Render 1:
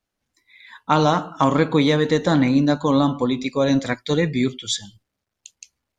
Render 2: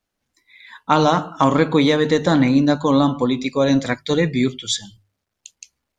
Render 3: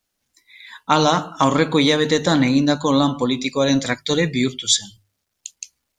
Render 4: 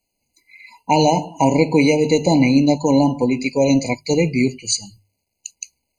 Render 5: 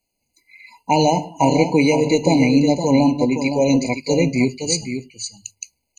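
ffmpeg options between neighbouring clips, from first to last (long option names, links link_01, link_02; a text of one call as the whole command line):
ffmpeg -i in.wav -af "bandreject=frequency=50:width_type=h:width=6,bandreject=frequency=100:width_type=h:width=6,bandreject=frequency=150:width_type=h:width=6,volume=2dB" out.wav
ffmpeg -i in.wav -af "highshelf=frequency=3100:gain=10.5,volume=-1.5dB" out.wav
ffmpeg -i in.wav -af "afftfilt=real='re*eq(mod(floor(b*sr/1024/1000),2),0)':imag='im*eq(mod(floor(b*sr/1024/1000),2),0)':win_size=1024:overlap=0.75,volume=2.5dB" out.wav
ffmpeg -i in.wav -af "aecho=1:1:515:0.398,volume=-1dB" out.wav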